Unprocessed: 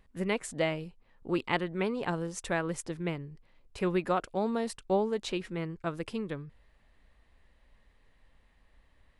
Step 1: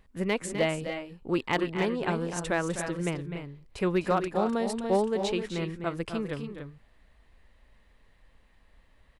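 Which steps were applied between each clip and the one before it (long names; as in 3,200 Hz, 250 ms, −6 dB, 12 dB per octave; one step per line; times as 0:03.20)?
gain into a clipping stage and back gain 19 dB
on a send: loudspeakers that aren't time-aligned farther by 87 metres −10 dB, 99 metres −9 dB
on the sum: level +2.5 dB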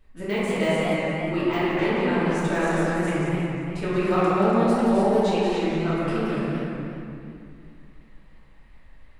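de-essing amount 80%
convolution reverb RT60 2.2 s, pre-delay 3 ms, DRR −11 dB
feedback echo with a swinging delay time 176 ms, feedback 47%, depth 178 cents, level −7 dB
level −6 dB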